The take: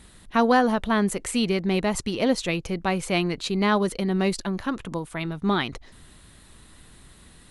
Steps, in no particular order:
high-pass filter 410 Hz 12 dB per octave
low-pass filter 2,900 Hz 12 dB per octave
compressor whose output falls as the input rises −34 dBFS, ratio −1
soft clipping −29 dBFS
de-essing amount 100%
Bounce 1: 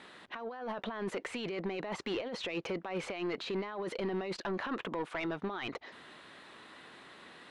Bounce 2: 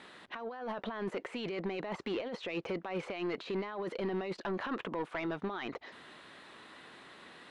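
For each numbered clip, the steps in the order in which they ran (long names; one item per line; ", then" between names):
high-pass filter, then compressor whose output falls as the input rises, then soft clipping, then low-pass filter, then de-essing
high-pass filter, then compressor whose output falls as the input rises, then de-essing, then soft clipping, then low-pass filter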